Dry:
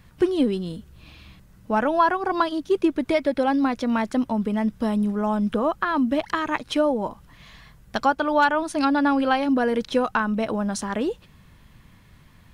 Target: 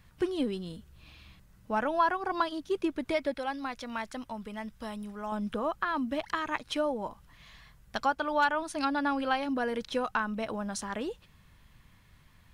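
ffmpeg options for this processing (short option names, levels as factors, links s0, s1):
-af "asetnsamples=n=441:p=0,asendcmd='3.35 equalizer g -13;5.32 equalizer g -5.5',equalizer=f=260:w=0.46:g=-4.5,volume=0.531"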